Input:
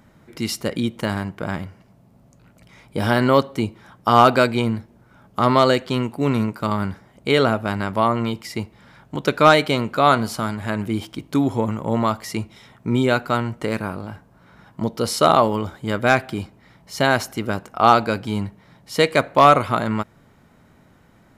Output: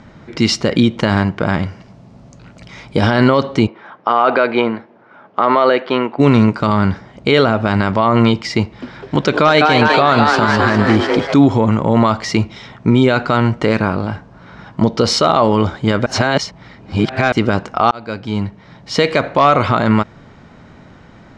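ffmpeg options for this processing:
ffmpeg -i in.wav -filter_complex "[0:a]asettb=1/sr,asplit=3[link_01][link_02][link_03];[link_01]atrim=end=1.634[link_04];[link_02]atrim=start=1.63:end=3.01,asetpts=PTS-STARTPTS,afade=type=in:duration=0.004:curve=qsin,afade=type=out:start_time=1.376:duration=0.004:curve=qsin,highshelf=frequency=5200:gain=7.5[link_05];[link_03]atrim=start=3.006[link_06];[link_04][link_05]acrossfade=duration=0.004:curve1=hsin:curve2=qsin[link_07];[link_07][link_06]acrossfade=duration=0.004:curve1=qsin:curve2=hsin,asplit=3[link_08][link_09][link_10];[link_08]afade=type=out:start_time=3.66:duration=0.02[link_11];[link_09]highpass=390,lowpass=2300,afade=type=in:start_time=3.66:duration=0.02,afade=type=out:start_time=6.18:duration=0.02[link_12];[link_10]afade=type=in:start_time=6.18:duration=0.02[link_13];[link_11][link_12][link_13]amix=inputs=3:normalize=0,asettb=1/sr,asplit=3[link_14][link_15][link_16];[link_14]atrim=end=8.624[link_17];[link_15]atrim=start=8.62:end=11.34,asetpts=PTS-STARTPTS,afade=type=in:duration=0.004:curve=qsin,afade=type=out:start_time=2.716:duration=0.004:curve=qsin,asplit=8[link_18][link_19][link_20][link_21][link_22][link_23][link_24][link_25];[link_19]adelay=202,afreqshift=150,volume=-6.5dB[link_26];[link_20]adelay=404,afreqshift=300,volume=-11.4dB[link_27];[link_21]adelay=606,afreqshift=450,volume=-16.3dB[link_28];[link_22]adelay=808,afreqshift=600,volume=-21.1dB[link_29];[link_23]adelay=1010,afreqshift=750,volume=-26dB[link_30];[link_24]adelay=1212,afreqshift=900,volume=-30.9dB[link_31];[link_25]adelay=1414,afreqshift=1050,volume=-35.8dB[link_32];[link_18][link_26][link_27][link_28][link_29][link_30][link_31][link_32]amix=inputs=8:normalize=0,atrim=end_sample=119952[link_33];[link_16]atrim=start=11.336[link_34];[link_17][link_33]acrossfade=duration=0.004:curve1=hsin:curve2=qsin[link_35];[link_35][link_34]acrossfade=duration=0.004:curve1=qsin:curve2=hsin,asplit=4[link_36][link_37][link_38][link_39];[link_36]atrim=end=16.062[link_40];[link_37]atrim=start=16.058:end=17.322,asetpts=PTS-STARTPTS,areverse[link_41];[link_38]atrim=start=17.318:end=17.91,asetpts=PTS-STARTPTS,afade=type=out:start_time=0.588:duration=0.004:curve=hsin[link_42];[link_39]atrim=start=17.91,asetpts=PTS-STARTPTS,afade=type=in:duration=1.04[link_43];[link_40][link_41]acrossfade=duration=0.004:curve1=hsin:curve2=hsin[link_44];[link_42][link_43]concat=n=2:v=0:a=1[link_45];[link_44][link_45]acrossfade=duration=0.004:curve1=hsin:curve2=hsin,lowpass=frequency=6000:width=0.5412,lowpass=frequency=6000:width=1.3066,alimiter=level_in=13dB:limit=-1dB:release=50:level=0:latency=1,volume=-1dB" out.wav

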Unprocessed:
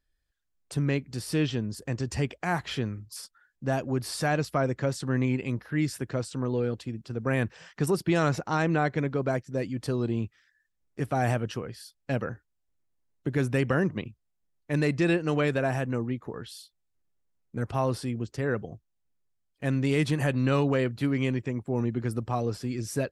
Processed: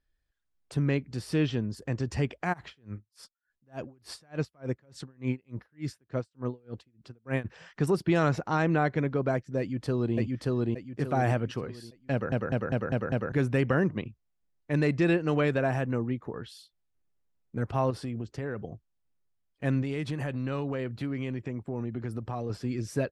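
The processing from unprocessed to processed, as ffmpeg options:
ffmpeg -i in.wav -filter_complex "[0:a]asplit=3[link_01][link_02][link_03];[link_01]afade=type=out:start_time=2.52:duration=0.02[link_04];[link_02]aeval=exprs='val(0)*pow(10,-36*(0.5-0.5*cos(2*PI*3.4*n/s))/20)':channel_layout=same,afade=type=in:start_time=2.52:duration=0.02,afade=type=out:start_time=7.44:duration=0.02[link_05];[link_03]afade=type=in:start_time=7.44:duration=0.02[link_06];[link_04][link_05][link_06]amix=inputs=3:normalize=0,asplit=2[link_07][link_08];[link_08]afade=type=in:start_time=9.59:duration=0.01,afade=type=out:start_time=10.16:duration=0.01,aecho=0:1:580|1160|1740|2320|2900:1|0.35|0.1225|0.042875|0.0150062[link_09];[link_07][link_09]amix=inputs=2:normalize=0,asettb=1/sr,asplit=3[link_10][link_11][link_12];[link_10]atrim=end=17.904[link_13];[link_11]atrim=start=17.9:end=18.63,asetpts=PTS-STARTPTS,afade=type=in:duration=0.004:curve=qsin,afade=type=out:start_time=0.726:duration=0.004:curve=qsin,acompressor=threshold=-29dB:ratio=6:attack=3.2:release=140:knee=1:detection=peak[link_14];[link_12]atrim=start=18.626[link_15];[link_13][link_14]acrossfade=duration=0.004:curve1=hsin:curve2=qsin[link_16];[link_16][link_15]acrossfade=duration=0.004:curve1=qsin:curve2=hsin,asettb=1/sr,asplit=3[link_17][link_18][link_19];[link_17]atrim=end=19.824[link_20];[link_18]atrim=start=19.82:end=22.5,asetpts=PTS-STARTPTS,afade=type=in:duration=0.004:curve=qsin,afade=type=out:start_time=2.676:duration=0.004:curve=qsin,acompressor=threshold=-31dB:ratio=2.5:attack=3.2:release=140:knee=1:detection=peak[link_21];[link_19]atrim=start=22.496[link_22];[link_20][link_21]acrossfade=duration=0.004:curve1=hsin:curve2=qsin[link_23];[link_23][link_22]acrossfade=duration=0.004:curve1=qsin:curve2=hsin,asplit=7[link_24][link_25][link_26][link_27][link_28][link_29][link_30];[link_24]atrim=end=12.322[link_31];[link_25]atrim=start=12.118:end=12.322[link_32];[link_26]atrim=start=12.118:end=12.322[link_33];[link_27]atrim=start=12.118:end=12.322[link_34];[link_28]atrim=start=12.118:end=12.322[link_35];[link_29]atrim=start=12.118:end=12.322[link_36];[link_30]atrim=start=13.318[link_37];[link_31][link_32]acrossfade=duration=0.004:curve1=hsin:curve2=hsin[link_38];[link_38][link_33]acrossfade=duration=0.004:curve1=hsin:curve2=hsin[link_39];[link_39][link_34]acrossfade=duration=0.004:curve1=hsin:curve2=hsin[link_40];[link_40][link_35]acrossfade=duration=0.004:curve1=hsin:curve2=hsin[link_41];[link_41][link_36]acrossfade=duration=0.004:curve1=hsin:curve2=hsin[link_42];[link_42][link_37]acrossfade=duration=0.004:curve1=hsin:curve2=hsin,lowpass=frequency=3400:poles=1" out.wav

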